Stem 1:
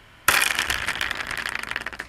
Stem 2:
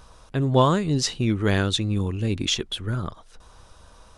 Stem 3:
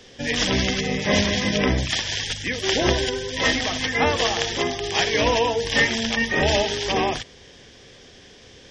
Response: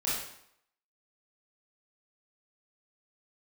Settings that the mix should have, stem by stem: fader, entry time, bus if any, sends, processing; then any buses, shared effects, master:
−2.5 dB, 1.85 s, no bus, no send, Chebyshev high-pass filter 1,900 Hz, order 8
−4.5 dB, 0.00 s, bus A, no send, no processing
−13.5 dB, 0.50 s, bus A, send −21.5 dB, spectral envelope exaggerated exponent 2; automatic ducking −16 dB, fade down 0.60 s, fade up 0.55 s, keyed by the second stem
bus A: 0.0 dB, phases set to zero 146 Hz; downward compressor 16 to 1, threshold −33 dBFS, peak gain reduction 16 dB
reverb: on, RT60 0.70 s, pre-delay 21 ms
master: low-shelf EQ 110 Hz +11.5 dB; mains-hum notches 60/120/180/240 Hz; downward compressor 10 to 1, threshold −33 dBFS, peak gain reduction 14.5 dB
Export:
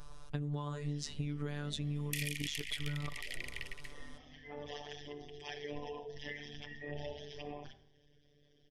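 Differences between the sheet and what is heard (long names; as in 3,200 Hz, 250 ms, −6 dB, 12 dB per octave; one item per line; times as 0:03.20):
stem 1 −2.5 dB → −12.5 dB
stem 3 −13.5 dB → −22.0 dB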